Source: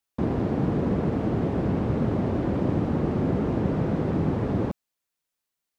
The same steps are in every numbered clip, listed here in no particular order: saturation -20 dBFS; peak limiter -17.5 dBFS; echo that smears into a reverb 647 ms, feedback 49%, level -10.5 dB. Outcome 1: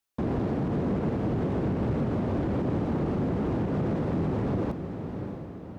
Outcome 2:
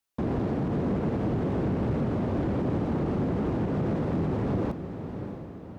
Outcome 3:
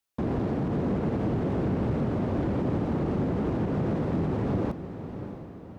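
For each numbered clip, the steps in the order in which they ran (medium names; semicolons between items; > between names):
echo that smears into a reverb > peak limiter > saturation; peak limiter > echo that smears into a reverb > saturation; peak limiter > saturation > echo that smears into a reverb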